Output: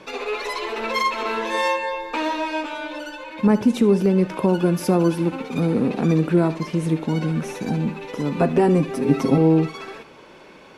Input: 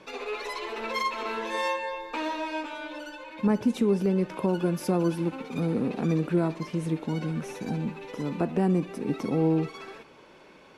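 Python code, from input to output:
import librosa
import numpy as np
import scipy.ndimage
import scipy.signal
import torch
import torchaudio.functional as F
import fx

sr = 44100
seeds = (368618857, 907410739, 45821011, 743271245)

y = fx.comb(x, sr, ms=7.5, depth=0.96, at=(8.36, 9.38))
y = y + 10.0 ** (-18.5 / 20.0) * np.pad(y, (int(75 * sr / 1000.0), 0))[:len(y)]
y = y * librosa.db_to_amplitude(7.0)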